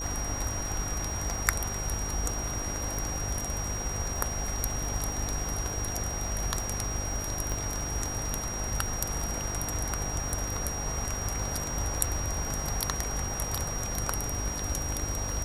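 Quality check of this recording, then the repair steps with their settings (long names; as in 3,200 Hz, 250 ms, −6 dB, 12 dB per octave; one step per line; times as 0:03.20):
mains buzz 50 Hz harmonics 14 −37 dBFS
surface crackle 40 per second −36 dBFS
whistle 5,700 Hz −35 dBFS
0:07.52: click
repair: click removal
hum removal 50 Hz, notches 14
notch filter 5,700 Hz, Q 30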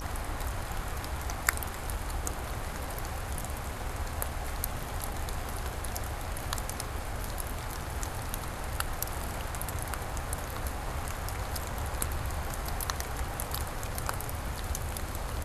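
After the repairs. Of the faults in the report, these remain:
none of them is left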